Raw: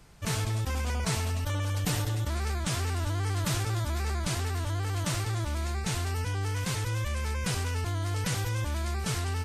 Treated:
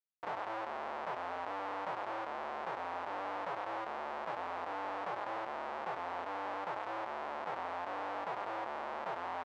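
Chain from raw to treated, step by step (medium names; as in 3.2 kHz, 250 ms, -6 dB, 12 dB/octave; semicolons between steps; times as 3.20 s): tilt EQ -2 dB/octave; Schmitt trigger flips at -24 dBFS; ladder band-pass 1 kHz, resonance 35%; doubling 24 ms -6.5 dB; trim +5.5 dB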